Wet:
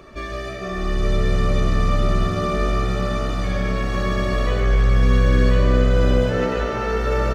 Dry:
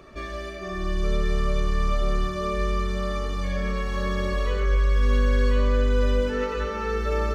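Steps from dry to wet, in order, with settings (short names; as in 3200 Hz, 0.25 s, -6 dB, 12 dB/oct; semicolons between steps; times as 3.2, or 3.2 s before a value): frequency-shifting echo 0.147 s, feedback 60%, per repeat +65 Hz, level -9.5 dB; gain +4 dB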